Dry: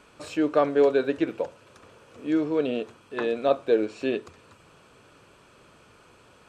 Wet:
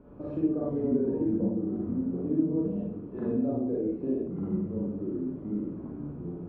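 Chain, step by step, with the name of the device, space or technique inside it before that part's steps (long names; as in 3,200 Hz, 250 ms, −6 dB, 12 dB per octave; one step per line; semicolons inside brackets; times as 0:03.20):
0:02.61–0:03.29: high-pass filter 1,200 Hz 6 dB per octave
television next door (downward compressor 6 to 1, threshold −37 dBFS, peak gain reduction 20 dB; low-pass filter 340 Hz 12 dB per octave; convolution reverb RT60 0.55 s, pre-delay 35 ms, DRR −5 dB)
delay with pitch and tempo change per echo 370 ms, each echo −4 semitones, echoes 2
level +7.5 dB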